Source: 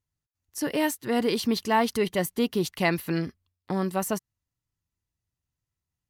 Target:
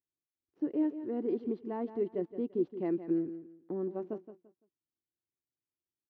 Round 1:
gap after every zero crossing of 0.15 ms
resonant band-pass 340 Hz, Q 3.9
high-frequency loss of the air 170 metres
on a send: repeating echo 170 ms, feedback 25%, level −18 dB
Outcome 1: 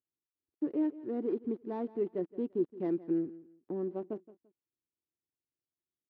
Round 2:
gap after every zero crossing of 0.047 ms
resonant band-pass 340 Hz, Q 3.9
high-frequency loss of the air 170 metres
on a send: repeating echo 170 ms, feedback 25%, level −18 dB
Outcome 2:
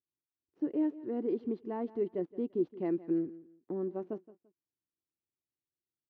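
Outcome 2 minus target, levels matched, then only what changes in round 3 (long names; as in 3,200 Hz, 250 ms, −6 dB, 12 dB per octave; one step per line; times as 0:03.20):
echo-to-direct −6 dB
change: repeating echo 170 ms, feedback 25%, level −12 dB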